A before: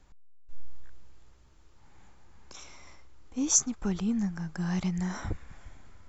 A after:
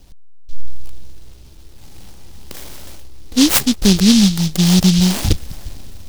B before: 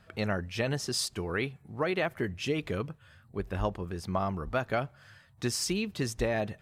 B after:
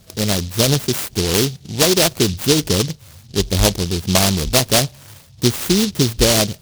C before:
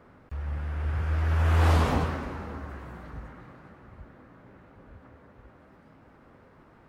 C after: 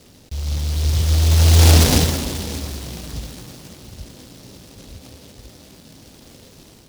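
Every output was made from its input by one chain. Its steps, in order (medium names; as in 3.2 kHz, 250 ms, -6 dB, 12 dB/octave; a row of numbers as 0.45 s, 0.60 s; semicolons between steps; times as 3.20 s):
treble shelf 2.7 kHz -11 dB; level rider gain up to 4 dB; delay time shaken by noise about 4.3 kHz, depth 0.25 ms; peak normalisation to -1.5 dBFS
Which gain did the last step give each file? +14.5 dB, +12.0 dB, +7.0 dB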